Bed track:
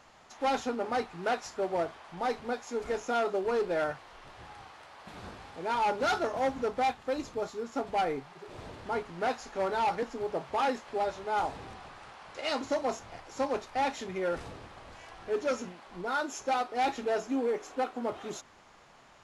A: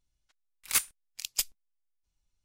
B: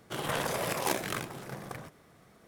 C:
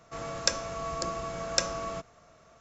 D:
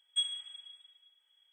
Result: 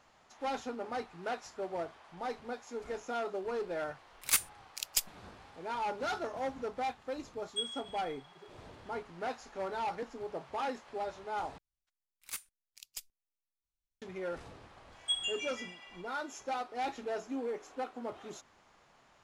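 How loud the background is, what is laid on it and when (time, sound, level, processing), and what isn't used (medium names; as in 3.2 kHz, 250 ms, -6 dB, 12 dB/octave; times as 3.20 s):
bed track -7 dB
3.58 s: add A -1.5 dB
7.40 s: add D -5 dB
11.58 s: replace with A -15 dB
14.92 s: add D -1.5 dB + ever faster or slower copies 122 ms, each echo -3 st, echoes 3, each echo -6 dB
not used: B, C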